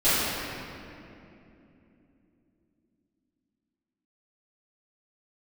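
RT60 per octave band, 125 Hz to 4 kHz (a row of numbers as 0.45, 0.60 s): 3.9, 4.7, 3.3, 2.5, 2.4, 1.7 s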